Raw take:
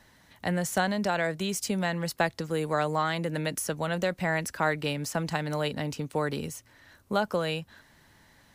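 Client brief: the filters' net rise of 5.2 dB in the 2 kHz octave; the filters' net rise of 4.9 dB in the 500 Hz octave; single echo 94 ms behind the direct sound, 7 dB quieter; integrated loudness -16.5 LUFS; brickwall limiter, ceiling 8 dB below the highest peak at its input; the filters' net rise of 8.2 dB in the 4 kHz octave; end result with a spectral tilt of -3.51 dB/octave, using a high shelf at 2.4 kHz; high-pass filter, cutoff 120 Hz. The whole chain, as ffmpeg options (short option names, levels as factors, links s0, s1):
-af "highpass=120,equalizer=f=500:t=o:g=5.5,equalizer=f=2000:t=o:g=3.5,highshelf=f=2400:g=3,equalizer=f=4000:t=o:g=6.5,alimiter=limit=0.168:level=0:latency=1,aecho=1:1:94:0.447,volume=3.16"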